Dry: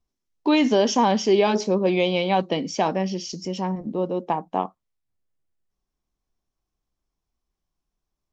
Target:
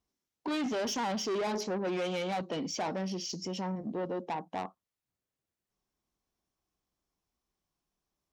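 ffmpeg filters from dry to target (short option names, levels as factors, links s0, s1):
-af "asoftclip=type=tanh:threshold=0.0668,alimiter=level_in=1.78:limit=0.0631:level=0:latency=1:release=336,volume=0.562,highpass=f=120:p=1"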